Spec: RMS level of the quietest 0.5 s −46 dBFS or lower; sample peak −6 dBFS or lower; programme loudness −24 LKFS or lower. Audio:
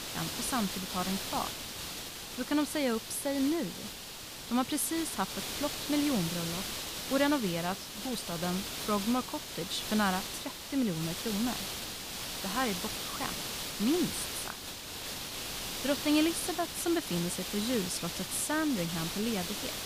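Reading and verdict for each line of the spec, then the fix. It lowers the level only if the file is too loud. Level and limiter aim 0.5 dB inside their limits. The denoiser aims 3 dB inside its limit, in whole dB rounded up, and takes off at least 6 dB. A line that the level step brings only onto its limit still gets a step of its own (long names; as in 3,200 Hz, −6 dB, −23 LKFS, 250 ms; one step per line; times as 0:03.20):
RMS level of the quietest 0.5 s −44 dBFS: out of spec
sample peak −14.5 dBFS: in spec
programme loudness −32.5 LKFS: in spec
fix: broadband denoise 6 dB, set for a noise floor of −44 dBFS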